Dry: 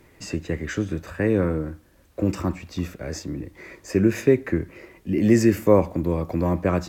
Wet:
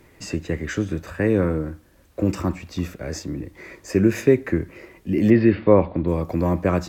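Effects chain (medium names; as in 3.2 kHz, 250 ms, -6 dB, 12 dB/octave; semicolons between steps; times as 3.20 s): 5.30–6.08 s: steep low-pass 4.3 kHz 72 dB/octave; trim +1.5 dB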